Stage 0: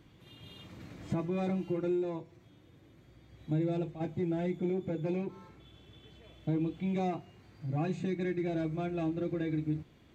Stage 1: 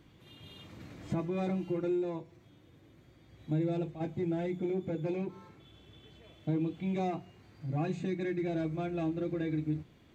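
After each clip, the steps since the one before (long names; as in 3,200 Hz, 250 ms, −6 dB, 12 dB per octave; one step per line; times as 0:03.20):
mains-hum notches 60/120/180 Hz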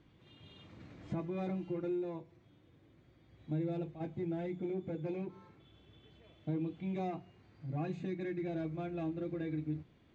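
high-frequency loss of the air 98 metres
level −4.5 dB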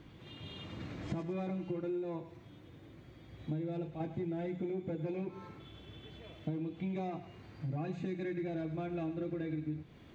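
downward compressor 5 to 1, threshold −45 dBFS, peak gain reduction 12.5 dB
feedback echo with a high-pass in the loop 103 ms, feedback 52%, high-pass 920 Hz, level −9.5 dB
level +9.5 dB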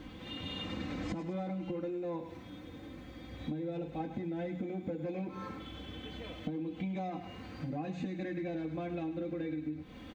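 comb filter 3.9 ms, depth 66%
downward compressor, threshold −41 dBFS, peak gain reduction 9 dB
level +6.5 dB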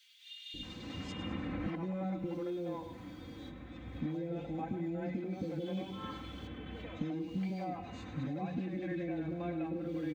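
three-band delay without the direct sound highs, lows, mids 540/630 ms, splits 510/2,800 Hz
level +1 dB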